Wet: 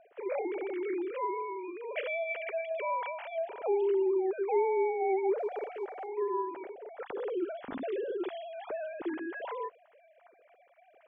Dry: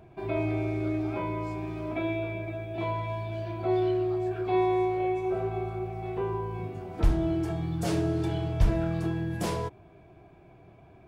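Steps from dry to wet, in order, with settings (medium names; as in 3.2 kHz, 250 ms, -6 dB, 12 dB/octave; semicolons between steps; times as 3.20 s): formants replaced by sine waves; bass shelf 340 Hz -2 dB; band-stop 1.1 kHz, Q 16; 5.38–6.07 s: companded quantiser 8-bit; distance through air 99 m; trim -3.5 dB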